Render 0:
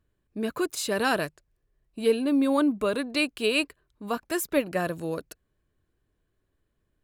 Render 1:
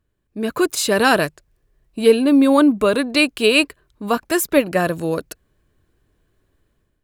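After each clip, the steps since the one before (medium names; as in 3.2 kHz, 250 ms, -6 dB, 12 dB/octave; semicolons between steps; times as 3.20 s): level rider gain up to 9.5 dB; trim +1.5 dB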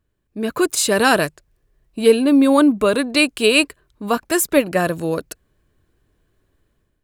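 dynamic bell 8.4 kHz, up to +5 dB, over -40 dBFS, Q 1.5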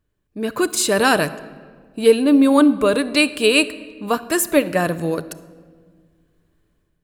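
simulated room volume 2100 m³, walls mixed, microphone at 0.42 m; trim -1 dB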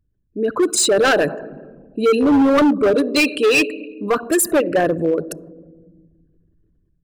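resonances exaggerated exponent 2; hard clipper -15 dBFS, distortion -9 dB; trim +4 dB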